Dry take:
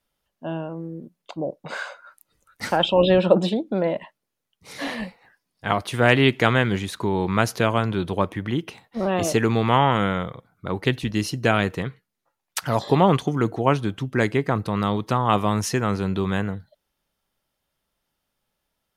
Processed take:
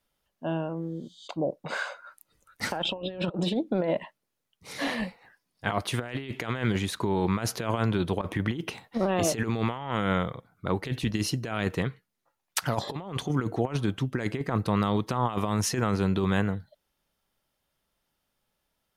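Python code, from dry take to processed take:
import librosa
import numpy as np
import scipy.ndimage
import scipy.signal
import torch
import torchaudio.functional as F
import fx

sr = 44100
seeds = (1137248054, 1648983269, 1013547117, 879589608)

y = fx.spec_repair(x, sr, seeds[0], start_s=0.77, length_s=0.48, low_hz=3000.0, high_hz=11000.0, source='both')
y = fx.over_compress(y, sr, threshold_db=-27.0, ratio=-0.5, at=(8.21, 9.01))
y = fx.over_compress(y, sr, threshold_db=-23.0, ratio=-0.5)
y = y * 10.0 ** (-3.5 / 20.0)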